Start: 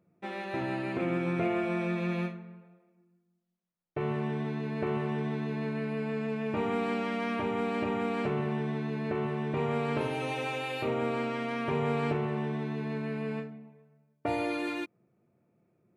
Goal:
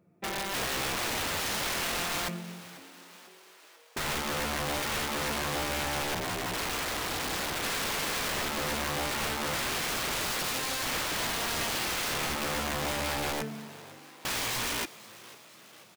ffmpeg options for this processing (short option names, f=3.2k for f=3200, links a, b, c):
-filter_complex "[0:a]asplit=3[a][b][c];[a]afade=t=out:st=6.14:d=0.02[d];[b]aeval=exprs='val(0)*sin(2*PI*180*n/s)':c=same,afade=t=in:st=6.14:d=0.02,afade=t=out:st=7.61:d=0.02[e];[c]afade=t=in:st=7.61:d=0.02[f];[d][e][f]amix=inputs=3:normalize=0,aeval=exprs='(mod(37.6*val(0)+1,2)-1)/37.6':c=same,asplit=7[g][h][i][j][k][l][m];[h]adelay=493,afreqshift=99,volume=-18.5dB[n];[i]adelay=986,afreqshift=198,volume=-22.4dB[o];[j]adelay=1479,afreqshift=297,volume=-26.3dB[p];[k]adelay=1972,afreqshift=396,volume=-30.1dB[q];[l]adelay=2465,afreqshift=495,volume=-34dB[r];[m]adelay=2958,afreqshift=594,volume=-37.9dB[s];[g][n][o][p][q][r][s]amix=inputs=7:normalize=0,volume=4.5dB"